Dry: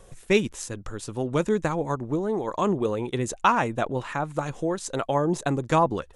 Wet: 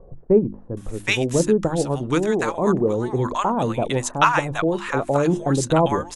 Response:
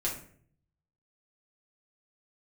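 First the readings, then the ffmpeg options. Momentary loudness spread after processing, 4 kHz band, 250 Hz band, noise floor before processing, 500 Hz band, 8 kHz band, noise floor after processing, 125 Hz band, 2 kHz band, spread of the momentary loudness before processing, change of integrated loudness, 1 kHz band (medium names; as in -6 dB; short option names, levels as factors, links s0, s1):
5 LU, +6.0 dB, +5.5 dB, -51 dBFS, +5.5 dB, +6.0 dB, -42 dBFS, +5.5 dB, +5.5 dB, 8 LU, +5.0 dB, +3.0 dB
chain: -filter_complex "[0:a]bandreject=f=50:t=h:w=6,bandreject=f=100:t=h:w=6,bandreject=f=150:t=h:w=6,bandreject=f=200:t=h:w=6,bandreject=f=250:t=h:w=6,bandreject=f=300:t=h:w=6,bandreject=f=350:t=h:w=6,acrossover=split=830[s0][s1];[s1]adelay=770[s2];[s0][s2]amix=inputs=2:normalize=0,volume=2.11"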